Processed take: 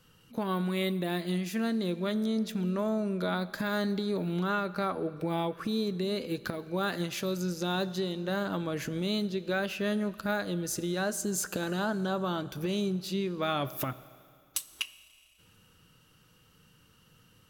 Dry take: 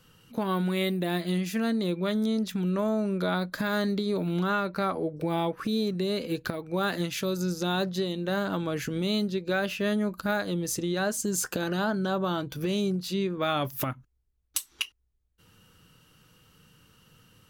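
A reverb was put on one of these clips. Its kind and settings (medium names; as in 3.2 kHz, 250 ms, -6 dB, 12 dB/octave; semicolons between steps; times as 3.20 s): Schroeder reverb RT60 2.4 s, combs from 28 ms, DRR 16.5 dB; trim -3 dB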